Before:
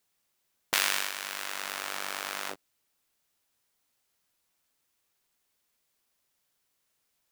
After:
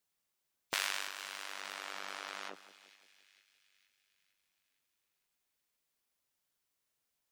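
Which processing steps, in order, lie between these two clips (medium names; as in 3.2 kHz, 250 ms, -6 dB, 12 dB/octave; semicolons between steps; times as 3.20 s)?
spectral gate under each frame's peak -15 dB strong; two-band feedback delay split 2 kHz, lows 173 ms, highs 458 ms, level -15.5 dB; trim -7.5 dB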